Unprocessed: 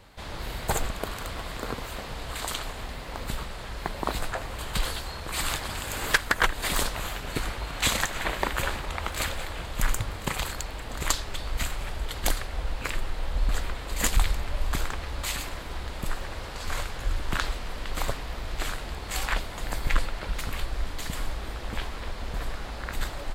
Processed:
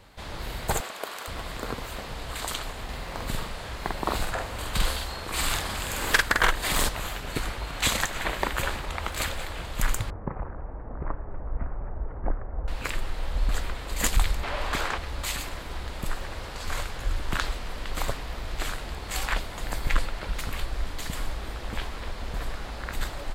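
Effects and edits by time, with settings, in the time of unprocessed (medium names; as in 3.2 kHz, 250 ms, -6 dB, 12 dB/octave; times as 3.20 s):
0.80–1.28 s: high-pass 440 Hz
2.84–6.89 s: doubling 47 ms -2.5 dB
10.10–12.68 s: Gaussian low-pass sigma 7.3 samples
14.43–14.98 s: overdrive pedal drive 17 dB, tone 2.3 kHz, clips at -15 dBFS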